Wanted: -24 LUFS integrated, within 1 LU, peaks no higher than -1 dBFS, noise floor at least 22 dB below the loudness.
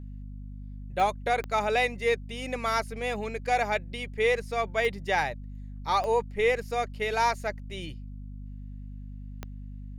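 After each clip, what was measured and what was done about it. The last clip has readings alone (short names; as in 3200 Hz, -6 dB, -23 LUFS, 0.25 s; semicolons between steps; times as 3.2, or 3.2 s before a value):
clicks 5; hum 50 Hz; harmonics up to 250 Hz; hum level -38 dBFS; loudness -28.5 LUFS; peak -13.0 dBFS; loudness target -24.0 LUFS
-> de-click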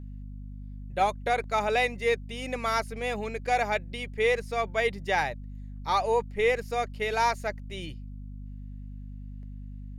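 clicks 0; hum 50 Hz; harmonics up to 250 Hz; hum level -38 dBFS
-> de-hum 50 Hz, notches 5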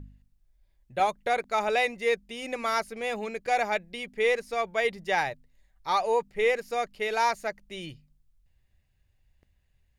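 hum none; loudness -28.0 LUFS; peak -13.5 dBFS; loudness target -24.0 LUFS
-> gain +4 dB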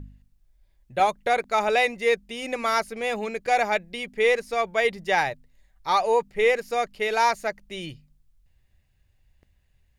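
loudness -24.0 LUFS; peak -9.5 dBFS; noise floor -66 dBFS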